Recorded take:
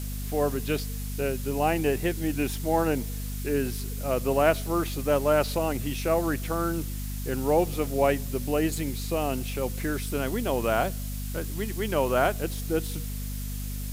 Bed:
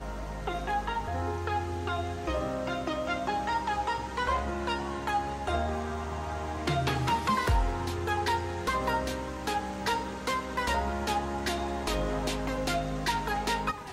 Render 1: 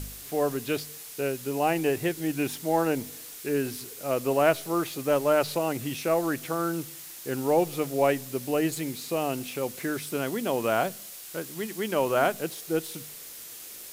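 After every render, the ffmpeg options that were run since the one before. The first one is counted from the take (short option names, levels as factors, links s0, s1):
-af "bandreject=f=50:t=h:w=4,bandreject=f=100:t=h:w=4,bandreject=f=150:t=h:w=4,bandreject=f=200:t=h:w=4,bandreject=f=250:t=h:w=4"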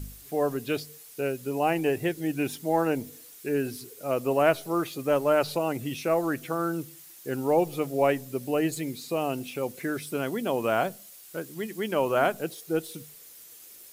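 -af "afftdn=nr=9:nf=-43"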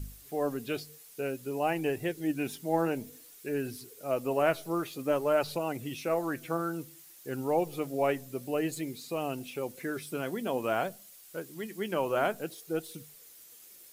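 -af "flanger=delay=0.3:depth=6.1:regen=76:speed=0.54:shape=triangular"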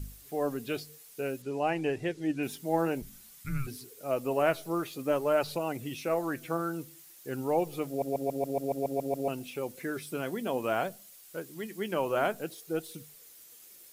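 -filter_complex "[0:a]asettb=1/sr,asplit=3[s0][s1][s2];[s0]atrim=end=1.424[s3];[s1]atrim=start=1.42:end=2.43,asetpts=PTS-STARTPTS,afade=t=in:d=0.004:c=qsin,afade=t=out:st=1.006:d=0.004:c=qsin,lowpass=6800[s4];[s2]atrim=start=2.426[s5];[s3][s4]acrossfade=d=0.004:c1=hsin:c2=qsin[s6];[s6][s5]acrossfade=d=0.004:c1=qsin:c2=hsin,asplit=3[s7][s8][s9];[s7]afade=t=out:st=3.01:d=0.02[s10];[s8]afreqshift=-270,afade=t=in:st=3.01:d=0.02,afade=t=out:st=3.66:d=0.02[s11];[s9]afade=t=in:st=3.66:d=0.02[s12];[s10][s11][s12]amix=inputs=3:normalize=0,asplit=11[s13][s14][s15][s16][s17][s18][s19][s20][s21][s22][s23];[s13]atrim=end=8.022[s24];[s14]atrim=start=7.878:end=8.022[s25];[s15]atrim=start=7.878:end=8.022[s26];[s16]atrim=start=7.878:end=8.022[s27];[s17]atrim=start=7.878:end=8.022[s28];[s18]atrim=start=7.878:end=8.022[s29];[s19]atrim=start=7.878:end=8.022[s30];[s20]atrim=start=7.878:end=8.022[s31];[s21]atrim=start=7.878:end=8.022[s32];[s22]atrim=start=7.878:end=8.022[s33];[s23]atrim=start=9.278[s34];[s24][s25]acrossfade=d=0.004:c1=hsin:c2=hsin[s35];[s35][s26]acrossfade=d=0.004:c1=hsin:c2=hsin[s36];[s36][s27]acrossfade=d=0.004:c1=hsin:c2=hsin[s37];[s37][s28]acrossfade=d=0.004:c1=hsin:c2=hsin[s38];[s38][s29]acrossfade=d=0.004:c1=hsin:c2=hsin[s39];[s39][s30]acrossfade=d=0.004:c1=hsin:c2=hsin[s40];[s40][s31]acrossfade=d=0.004:c1=hsin:c2=hsin[s41];[s41][s32]acrossfade=d=0.004:c1=hsin:c2=hsin[s42];[s42][s33]acrossfade=d=0.004:c1=hsin:c2=hsin[s43];[s43][s34]acrossfade=d=0.004:c1=hsin:c2=hsin"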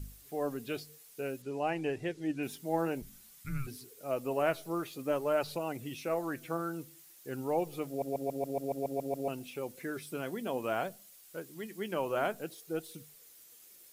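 -af "volume=0.668"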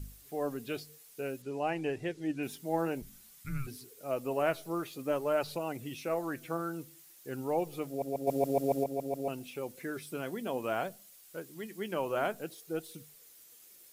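-filter_complex "[0:a]asettb=1/sr,asplit=3[s0][s1][s2];[s0]atrim=end=8.274[s3];[s1]atrim=start=8.27:end=8.84,asetpts=PTS-STARTPTS,afade=t=in:d=0.004:c=qsin,afade=t=out:st=0.566:d=0.004:c=qsin,acontrast=46[s4];[s2]atrim=start=8.836[s5];[s3][s4]acrossfade=d=0.004:c1=hsin:c2=qsin[s6];[s6][s5]acrossfade=d=0.004:c1=qsin:c2=hsin"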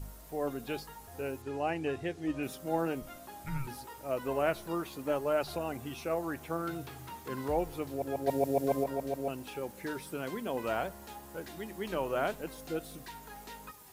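-filter_complex "[1:a]volume=0.126[s0];[0:a][s0]amix=inputs=2:normalize=0"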